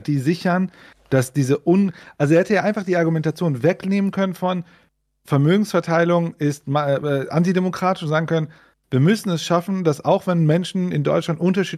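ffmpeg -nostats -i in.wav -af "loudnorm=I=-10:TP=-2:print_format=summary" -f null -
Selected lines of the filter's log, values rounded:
Input Integrated:    -19.8 LUFS
Input True Peak:      -4.4 dBTP
Input LRA:             1.4 LU
Input Threshold:     -30.0 LUFS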